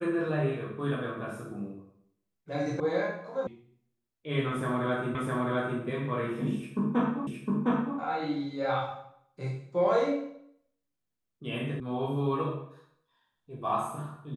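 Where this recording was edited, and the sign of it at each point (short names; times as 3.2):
2.8 sound cut off
3.47 sound cut off
5.15 repeat of the last 0.66 s
7.27 repeat of the last 0.71 s
11.8 sound cut off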